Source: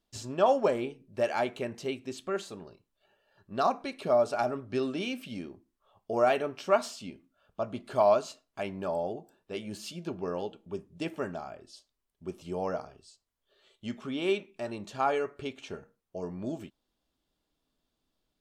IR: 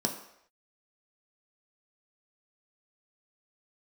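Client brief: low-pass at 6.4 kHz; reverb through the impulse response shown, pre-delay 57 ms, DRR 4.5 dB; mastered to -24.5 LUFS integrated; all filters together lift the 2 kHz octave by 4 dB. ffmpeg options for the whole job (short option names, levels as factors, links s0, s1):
-filter_complex "[0:a]lowpass=6400,equalizer=f=2000:t=o:g=5.5,asplit=2[s0][s1];[1:a]atrim=start_sample=2205,adelay=57[s2];[s1][s2]afir=irnorm=-1:irlink=0,volume=0.299[s3];[s0][s3]amix=inputs=2:normalize=0,volume=1.5"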